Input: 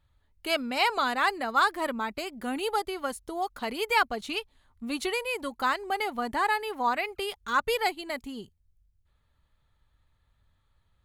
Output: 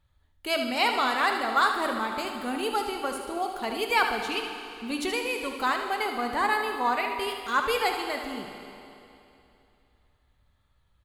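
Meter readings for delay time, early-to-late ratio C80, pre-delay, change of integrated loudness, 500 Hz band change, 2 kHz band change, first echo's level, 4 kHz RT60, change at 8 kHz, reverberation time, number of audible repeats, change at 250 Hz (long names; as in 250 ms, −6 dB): 75 ms, 6.5 dB, 12 ms, +1.5 dB, +1.5 dB, +1.5 dB, −9.5 dB, 2.8 s, +1.5 dB, 2.8 s, 1, +2.0 dB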